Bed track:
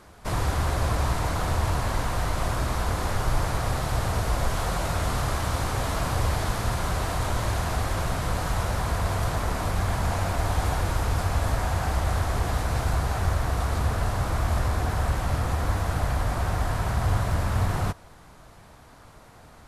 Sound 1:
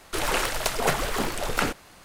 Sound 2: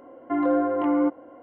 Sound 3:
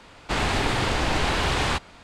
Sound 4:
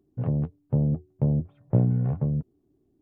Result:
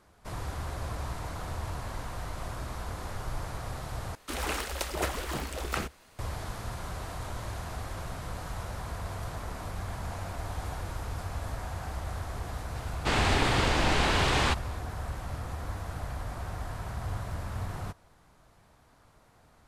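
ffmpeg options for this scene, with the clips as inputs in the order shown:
-filter_complex "[0:a]volume=-11dB[a];[1:a]afreqshift=-78[b];[a]asplit=2[c][d];[c]atrim=end=4.154[e];[b]atrim=end=2.04,asetpts=PTS-STARTPTS,volume=-7.5dB[f];[d]atrim=start=6.186[g];[3:a]atrim=end=2.03,asetpts=PTS-STARTPTS,volume=-2dB,afade=t=in:d=0.004:c=hsin,afade=t=out:st=2.026:d=0.004:c=hsin,adelay=12760[h];[e][f]acrossfade=d=0.004:c1=hsin:c2=hsin[i];[i][g]acrossfade=d=0.004:c1=hsin:c2=hsin[j];[j][h]amix=inputs=2:normalize=0"

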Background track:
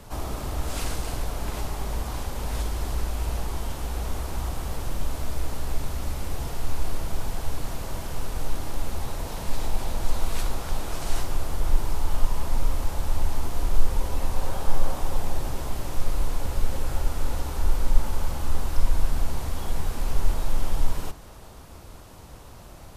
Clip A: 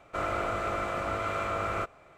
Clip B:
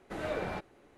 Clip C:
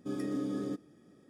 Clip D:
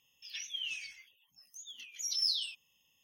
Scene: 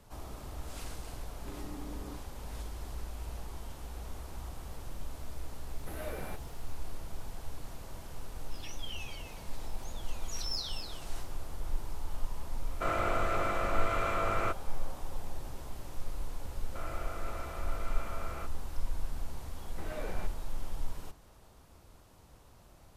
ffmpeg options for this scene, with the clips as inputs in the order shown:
-filter_complex "[2:a]asplit=2[a][b];[1:a]asplit=2[c][d];[0:a]volume=-13dB[e];[3:a]alimiter=level_in=11dB:limit=-24dB:level=0:latency=1:release=325,volume=-11dB[f];[a]aexciter=amount=15.2:drive=6.3:freq=10k[g];[4:a]aecho=1:1:251:0.376[h];[c]highpass=53[i];[f]atrim=end=1.29,asetpts=PTS-STARTPTS,volume=-4dB,afade=t=in:d=0.004:c=hsin,afade=t=out:st=1.286:d=0.004:c=hsin,adelay=1410[j];[g]atrim=end=0.97,asetpts=PTS-STARTPTS,volume=-7dB,afade=t=in:d=0.004:c=hsin,afade=t=out:st=0.966:d=0.004:c=hsin,adelay=5760[k];[h]atrim=end=3.03,asetpts=PTS-STARTPTS,volume=-6.5dB,afade=t=in:d=0.004:c=hsin,afade=t=out:st=3.026:d=0.004:c=hsin,adelay=8290[l];[i]atrim=end=2.17,asetpts=PTS-STARTPTS,volume=-1dB,afade=t=in:d=0.004:c=hsin,afade=t=out:st=2.166:d=0.004:c=hsin,adelay=12670[m];[d]atrim=end=2.17,asetpts=PTS-STARTPTS,volume=-12.5dB,afade=t=in:d=0.004:c=hsin,afade=t=out:st=2.166:d=0.004:c=hsin,adelay=16610[n];[b]atrim=end=0.97,asetpts=PTS-STARTPTS,volume=-7dB,afade=t=in:d=0.004:c=hsin,afade=t=out:st=0.966:d=0.004:c=hsin,adelay=19670[o];[e][j][k][l][m][n][o]amix=inputs=7:normalize=0"

